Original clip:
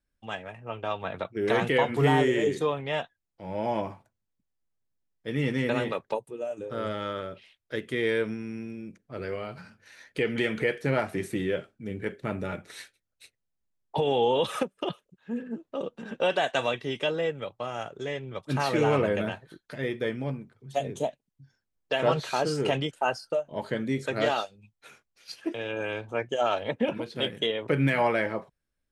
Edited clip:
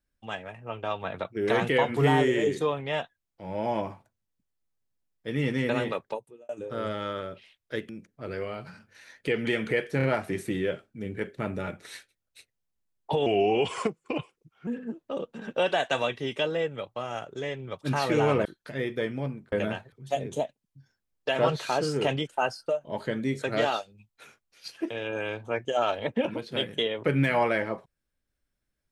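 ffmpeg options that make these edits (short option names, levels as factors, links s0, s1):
-filter_complex "[0:a]asplit=10[s0][s1][s2][s3][s4][s5][s6][s7][s8][s9];[s0]atrim=end=6.49,asetpts=PTS-STARTPTS,afade=t=out:st=5.96:d=0.53[s10];[s1]atrim=start=6.49:end=7.892,asetpts=PTS-STARTPTS,afade=t=in:d=0.004:c=hsin[s11];[s2]atrim=start=8.798:end=10.912[s12];[s3]atrim=start=10.878:end=10.912[s13];[s4]atrim=start=10.878:end=14.114[s14];[s5]atrim=start=14.11:end=15.31,asetpts=PTS-STARTPTS,asetrate=37485,aresample=44100[s15];[s6]atrim=start=15.306:end=19.092[s16];[s7]atrim=start=19.488:end=20.562[s17];[s8]atrim=start=19.088:end=19.492[s18];[s9]atrim=start=20.558[s19];[s10][s11]concat=n=2:v=0:a=1[s20];[s20][s12]acrossfade=d=0.004:c1=hsin:c2=hsin[s21];[s21][s13]acrossfade=d=0.004:c1=hsin:c2=hsin[s22];[s22][s14]acrossfade=d=0.004:c1=hsin:c2=hsin[s23];[s23][s15]acrossfade=d=0.004:c1=hsin:c2=hsin[s24];[s24][s16]acrossfade=d=0.004:c1=hsin:c2=hsin[s25];[s25][s17]acrossfade=d=0.004:c1=hsin:c2=hsin[s26];[s26][s18]acrossfade=d=0.004:c1=hsin:c2=hsin[s27];[s27][s19]acrossfade=d=0.004:c1=hsin:c2=hsin"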